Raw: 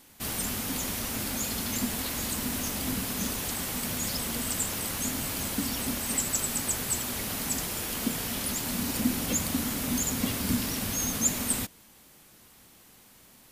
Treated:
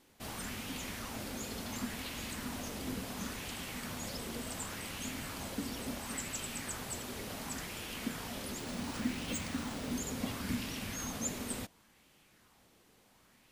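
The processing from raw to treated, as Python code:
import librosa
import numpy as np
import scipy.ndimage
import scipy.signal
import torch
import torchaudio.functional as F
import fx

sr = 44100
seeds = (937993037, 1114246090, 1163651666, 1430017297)

y = fx.high_shelf(x, sr, hz=8700.0, db=-11.5)
y = fx.resample_bad(y, sr, factor=3, down='none', up='hold', at=(8.6, 9.92))
y = fx.bell_lfo(y, sr, hz=0.7, low_hz=400.0, high_hz=2900.0, db=6)
y = F.gain(torch.from_numpy(y), -8.0).numpy()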